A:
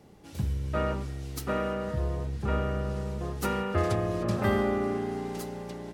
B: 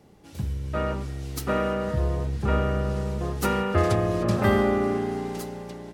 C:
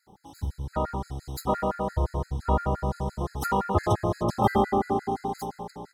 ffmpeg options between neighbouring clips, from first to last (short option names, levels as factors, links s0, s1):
-af "dynaudnorm=f=310:g=7:m=1.78"
-af "superequalizer=9b=3.16:11b=0.631:12b=0.251,afftfilt=real='re*gt(sin(2*PI*5.8*pts/sr)*(1-2*mod(floor(b*sr/1024/1300),2)),0)':imag='im*gt(sin(2*PI*5.8*pts/sr)*(1-2*mod(floor(b*sr/1024/1300),2)),0)':win_size=1024:overlap=0.75"